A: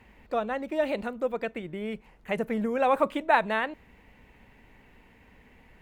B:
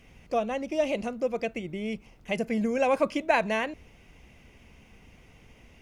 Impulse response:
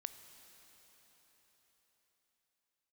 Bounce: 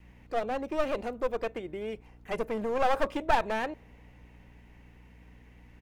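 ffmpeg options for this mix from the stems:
-filter_complex "[0:a]adynamicequalizer=threshold=0.0126:dfrequency=570:dqfactor=0.9:tfrequency=570:tqfactor=0.9:attack=5:release=100:ratio=0.375:range=4:mode=boostabove:tftype=bell,aeval=exprs='clip(val(0),-1,0.0447)':channel_layout=same,volume=-4.5dB[link_01];[1:a]aeval=exprs='val(0)+0.00891*(sin(2*PI*60*n/s)+sin(2*PI*2*60*n/s)/2+sin(2*PI*3*60*n/s)/3+sin(2*PI*4*60*n/s)/4+sin(2*PI*5*60*n/s)/5)':channel_layout=same,adelay=2.3,volume=-12.5dB[link_02];[link_01][link_02]amix=inputs=2:normalize=0"

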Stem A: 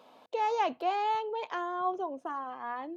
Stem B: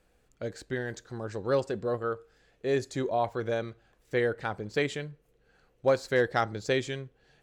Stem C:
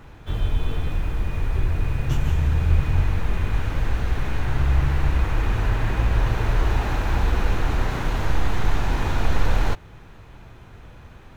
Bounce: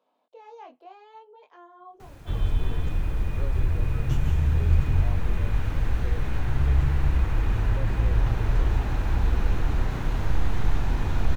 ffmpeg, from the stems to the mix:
ffmpeg -i stem1.wav -i stem2.wav -i stem3.wav -filter_complex "[0:a]highpass=frequency=420:poles=1,tiltshelf=frequency=1100:gain=3.5,flanger=delay=19:depth=5.5:speed=0.7,volume=-13.5dB[link_01];[1:a]adelay=1900,volume=-16.5dB[link_02];[2:a]acrusher=bits=8:mix=0:aa=0.000001,adelay=2000,volume=-5dB[link_03];[link_01][link_02][link_03]amix=inputs=3:normalize=0,lowshelf=frequency=330:gain=3.5,acrossover=split=300[link_04][link_05];[link_05]acompressor=threshold=-36dB:ratio=2.5[link_06];[link_04][link_06]amix=inputs=2:normalize=0" out.wav

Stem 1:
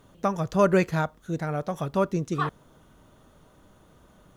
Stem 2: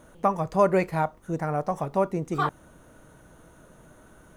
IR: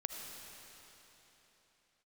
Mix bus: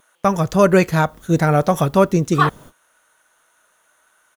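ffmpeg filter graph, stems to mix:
-filter_complex "[0:a]highshelf=frequency=10000:gain=10.5,dynaudnorm=framelen=150:gausssize=3:maxgain=14dB,volume=0dB[link_01];[1:a]highpass=1300,adelay=4.6,volume=1.5dB,asplit=2[link_02][link_03];[link_03]apad=whole_len=192342[link_04];[link_01][link_04]sidechaingate=range=-44dB:threshold=-53dB:ratio=16:detection=peak[link_05];[link_05][link_02]amix=inputs=2:normalize=0"

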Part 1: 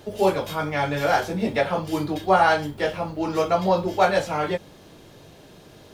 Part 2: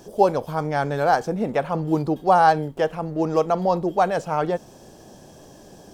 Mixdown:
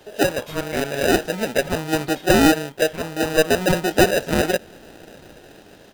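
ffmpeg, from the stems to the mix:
ffmpeg -i stem1.wav -i stem2.wav -filter_complex "[0:a]highpass=520,acompressor=threshold=-28dB:ratio=6,volume=-2.5dB[link_01];[1:a]lowshelf=frequency=190:gain=-11.5,dynaudnorm=framelen=280:gausssize=7:maxgain=11.5dB,acrusher=samples=40:mix=1:aa=0.000001,adelay=3.8,volume=-1.5dB[link_02];[link_01][link_02]amix=inputs=2:normalize=0,equalizer=frequency=2400:width_type=o:width=0.77:gain=2" out.wav

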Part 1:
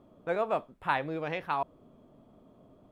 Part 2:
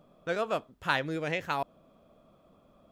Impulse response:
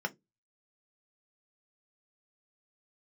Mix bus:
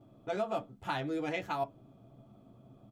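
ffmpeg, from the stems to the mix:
-filter_complex "[0:a]equalizer=frequency=120:width_type=o:width=0.51:gain=14.5,volume=-6dB,asplit=2[link_01][link_02];[link_02]volume=-4dB[link_03];[1:a]adelay=10,volume=-3.5dB,asplit=2[link_04][link_05];[link_05]volume=-9dB[link_06];[2:a]atrim=start_sample=2205[link_07];[link_03][link_06]amix=inputs=2:normalize=0[link_08];[link_08][link_07]afir=irnorm=-1:irlink=0[link_09];[link_01][link_04][link_09]amix=inputs=3:normalize=0,alimiter=limit=-23dB:level=0:latency=1:release=151"

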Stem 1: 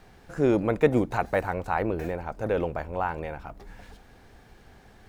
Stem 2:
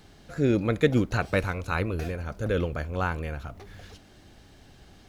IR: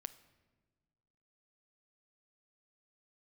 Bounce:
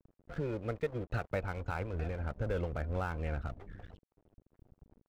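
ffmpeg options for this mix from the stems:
-filter_complex "[0:a]volume=-17.5dB,asplit=2[link_01][link_02];[1:a]lowshelf=frequency=64:gain=8,adelay=1.5,volume=-1.5dB[link_03];[link_02]apad=whole_len=224108[link_04];[link_03][link_04]sidechaincompress=threshold=-45dB:ratio=12:attack=7.1:release=355[link_05];[link_01][link_05]amix=inputs=2:normalize=0,afftfilt=real='re*gte(hypot(re,im),0.00501)':imag='im*gte(hypot(re,im),0.00501)':win_size=1024:overlap=0.75,lowpass=2900,aeval=exprs='sgn(val(0))*max(abs(val(0))-0.00422,0)':channel_layout=same"

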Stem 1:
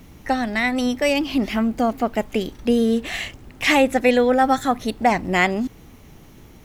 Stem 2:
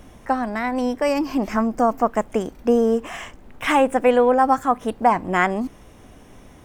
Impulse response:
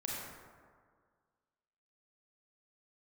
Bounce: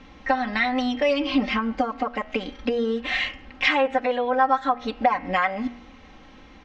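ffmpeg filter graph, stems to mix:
-filter_complex "[0:a]bandreject=frequency=79.96:width_type=h:width=4,bandreject=frequency=159.92:width_type=h:width=4,bandreject=frequency=239.88:width_type=h:width=4,bandreject=frequency=319.84:width_type=h:width=4,bandreject=frequency=399.8:width_type=h:width=4,bandreject=frequency=479.76:width_type=h:width=4,bandreject=frequency=559.72:width_type=h:width=4,bandreject=frequency=639.68:width_type=h:width=4,bandreject=frequency=719.64:width_type=h:width=4,bandreject=frequency=799.6:width_type=h:width=4,bandreject=frequency=879.56:width_type=h:width=4,bandreject=frequency=959.52:width_type=h:width=4,bandreject=frequency=1039.48:width_type=h:width=4,bandreject=frequency=1119.44:width_type=h:width=4,bandreject=frequency=1199.4:width_type=h:width=4,bandreject=frequency=1279.36:width_type=h:width=4,bandreject=frequency=1359.32:width_type=h:width=4,bandreject=frequency=1439.28:width_type=h:width=4,bandreject=frequency=1519.24:width_type=h:width=4,bandreject=frequency=1599.2:width_type=h:width=4,bandreject=frequency=1679.16:width_type=h:width=4,bandreject=frequency=1759.12:width_type=h:width=4,bandreject=frequency=1839.08:width_type=h:width=4,bandreject=frequency=1919.04:width_type=h:width=4,bandreject=frequency=1999:width_type=h:width=4,bandreject=frequency=2078.96:width_type=h:width=4,bandreject=frequency=2158.92:width_type=h:width=4,bandreject=frequency=2238.88:width_type=h:width=4,bandreject=frequency=2318.84:width_type=h:width=4,bandreject=frequency=2398.8:width_type=h:width=4,bandreject=frequency=2478.76:width_type=h:width=4,bandreject=frequency=2558.72:width_type=h:width=4,bandreject=frequency=2638.68:width_type=h:width=4,bandreject=frequency=2718.64:width_type=h:width=4,bandreject=frequency=2798.6:width_type=h:width=4,bandreject=frequency=2878.56:width_type=h:width=4,bandreject=frequency=2958.52:width_type=h:width=4,bandreject=frequency=3038.48:width_type=h:width=4,bandreject=frequency=3118.44:width_type=h:width=4,bandreject=frequency=3198.4:width_type=h:width=4,alimiter=limit=-8.5dB:level=0:latency=1:release=331,volume=-6dB[link_01];[1:a]highpass=frequency=370:width=0.5412,highpass=frequency=370:width=1.3066,bandreject=frequency=670:width=12,adelay=6.3,volume=-13.5dB,asplit=2[link_02][link_03];[link_03]apad=whole_len=293184[link_04];[link_01][link_04]sidechaincompress=threshold=-39dB:ratio=8:attack=16:release=200[link_05];[link_05][link_02]amix=inputs=2:normalize=0,lowpass=frequency=5100:width=0.5412,lowpass=frequency=5100:width=1.3066,equalizer=frequency=1700:width=0.35:gain=8.5,aecho=1:1:3.8:0.71"

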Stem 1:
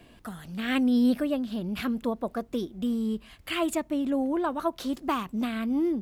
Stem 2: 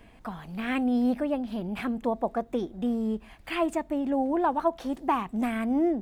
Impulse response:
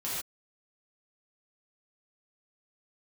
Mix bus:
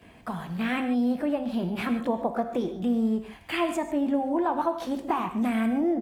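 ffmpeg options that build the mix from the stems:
-filter_complex "[0:a]acompressor=threshold=-36dB:ratio=3,volume=-4dB[link_01];[1:a]acompressor=threshold=-26dB:ratio=6,adelay=18,volume=1.5dB,asplit=3[link_02][link_03][link_04];[link_03]volume=-9.5dB[link_05];[link_04]apad=whole_len=265334[link_06];[link_01][link_06]sidechaingate=range=-33dB:threshold=-40dB:ratio=16:detection=peak[link_07];[2:a]atrim=start_sample=2205[link_08];[link_05][link_08]afir=irnorm=-1:irlink=0[link_09];[link_07][link_02][link_09]amix=inputs=3:normalize=0,highpass=66"

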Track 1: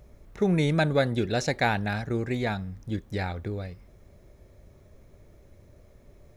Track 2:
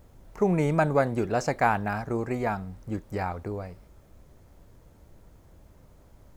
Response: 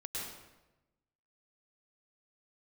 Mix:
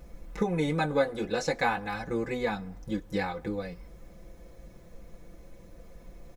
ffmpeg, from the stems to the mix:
-filter_complex "[0:a]aecho=1:1:5.9:0.84,volume=1.5dB[link_01];[1:a]flanger=delay=15.5:depth=2.6:speed=0.5,adelay=2.5,volume=-5dB,asplit=3[link_02][link_03][link_04];[link_03]volume=-21dB[link_05];[link_04]apad=whole_len=280940[link_06];[link_01][link_06]sidechaincompress=threshold=-40dB:ratio=4:attack=45:release=788[link_07];[2:a]atrim=start_sample=2205[link_08];[link_05][link_08]afir=irnorm=-1:irlink=0[link_09];[link_07][link_02][link_09]amix=inputs=3:normalize=0,aecho=1:1:4:0.43"

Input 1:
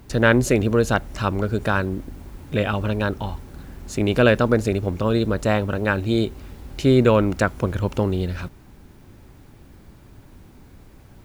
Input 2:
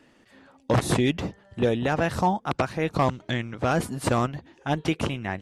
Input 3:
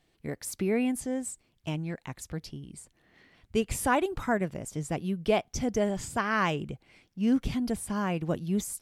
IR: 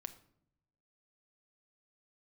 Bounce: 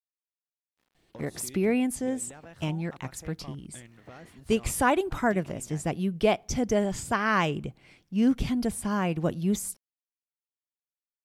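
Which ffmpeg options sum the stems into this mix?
-filter_complex "[1:a]aeval=exprs='val(0)*gte(abs(val(0)),0.00501)':channel_layout=same,adelay=450,volume=-18.5dB[link_01];[2:a]adelay=950,volume=1.5dB,asplit=2[link_02][link_03];[link_03]volume=-15dB[link_04];[link_01]acompressor=threshold=-43dB:ratio=6,volume=0dB[link_05];[3:a]atrim=start_sample=2205[link_06];[link_04][link_06]afir=irnorm=-1:irlink=0[link_07];[link_02][link_05][link_07]amix=inputs=3:normalize=0"

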